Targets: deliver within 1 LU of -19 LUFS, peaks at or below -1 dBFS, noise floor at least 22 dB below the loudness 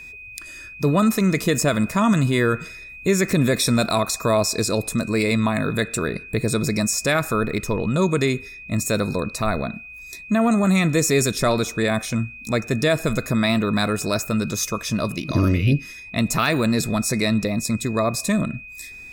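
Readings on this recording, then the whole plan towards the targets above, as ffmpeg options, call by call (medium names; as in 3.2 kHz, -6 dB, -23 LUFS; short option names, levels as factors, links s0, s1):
steady tone 2.5 kHz; tone level -37 dBFS; loudness -21.5 LUFS; peak level -8.0 dBFS; loudness target -19.0 LUFS
-> -af "bandreject=f=2500:w=30"
-af "volume=1.33"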